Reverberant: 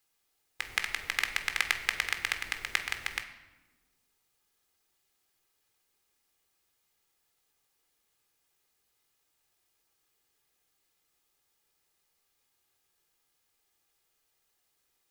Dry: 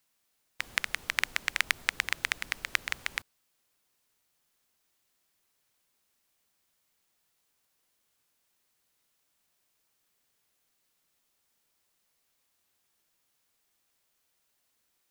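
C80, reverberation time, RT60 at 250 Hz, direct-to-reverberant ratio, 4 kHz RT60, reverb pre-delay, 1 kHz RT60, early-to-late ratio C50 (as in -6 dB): 12.5 dB, 1.1 s, 1.8 s, 7.0 dB, 0.80 s, 3 ms, 1.0 s, 10.0 dB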